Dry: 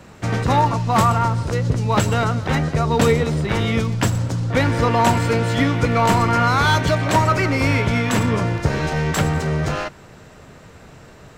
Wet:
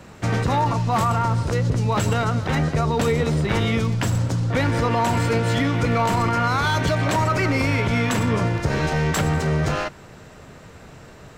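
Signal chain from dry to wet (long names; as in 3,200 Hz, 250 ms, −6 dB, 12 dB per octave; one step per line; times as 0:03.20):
brickwall limiter −12 dBFS, peak gain reduction 7.5 dB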